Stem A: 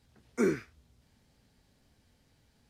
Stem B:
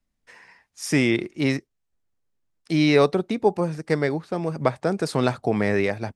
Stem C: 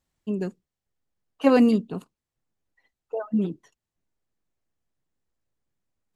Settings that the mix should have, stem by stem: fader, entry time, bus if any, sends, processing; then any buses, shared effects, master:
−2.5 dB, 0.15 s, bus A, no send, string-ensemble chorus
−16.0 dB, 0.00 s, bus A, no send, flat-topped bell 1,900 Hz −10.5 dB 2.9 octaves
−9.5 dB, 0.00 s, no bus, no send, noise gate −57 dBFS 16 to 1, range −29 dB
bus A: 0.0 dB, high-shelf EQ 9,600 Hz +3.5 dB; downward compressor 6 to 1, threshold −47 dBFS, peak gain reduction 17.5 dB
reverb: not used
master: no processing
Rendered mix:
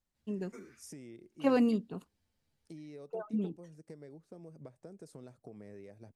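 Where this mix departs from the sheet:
stem A −2.5 dB → −11.0 dB
stem C: missing noise gate −57 dBFS 16 to 1, range −29 dB

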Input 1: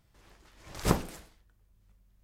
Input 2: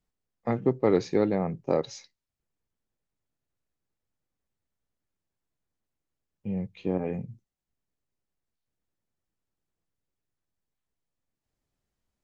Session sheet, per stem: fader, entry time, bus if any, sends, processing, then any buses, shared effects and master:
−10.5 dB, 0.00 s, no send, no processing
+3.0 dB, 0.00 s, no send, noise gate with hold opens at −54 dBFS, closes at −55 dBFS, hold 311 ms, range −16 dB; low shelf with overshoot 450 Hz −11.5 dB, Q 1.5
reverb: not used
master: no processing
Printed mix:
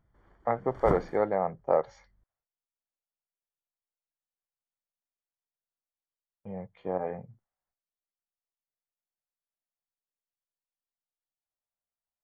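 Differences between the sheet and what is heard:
stem 1 −10.5 dB → −3.0 dB
master: extra Savitzky-Golay smoothing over 41 samples

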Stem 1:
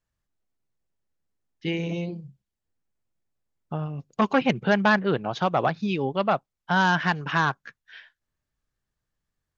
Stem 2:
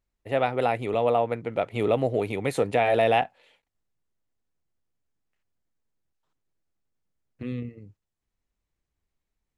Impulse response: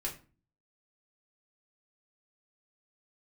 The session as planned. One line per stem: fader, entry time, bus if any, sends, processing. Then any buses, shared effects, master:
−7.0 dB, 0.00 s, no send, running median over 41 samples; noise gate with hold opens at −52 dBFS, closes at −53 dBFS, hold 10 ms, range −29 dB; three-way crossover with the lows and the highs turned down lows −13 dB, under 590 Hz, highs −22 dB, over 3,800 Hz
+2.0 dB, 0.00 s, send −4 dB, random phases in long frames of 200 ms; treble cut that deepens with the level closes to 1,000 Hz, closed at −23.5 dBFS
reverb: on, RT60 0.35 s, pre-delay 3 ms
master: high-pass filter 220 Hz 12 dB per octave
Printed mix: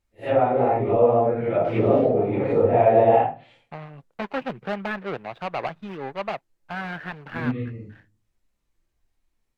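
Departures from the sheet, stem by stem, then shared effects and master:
stem 1 −7.0 dB → +3.0 dB
master: missing high-pass filter 220 Hz 12 dB per octave

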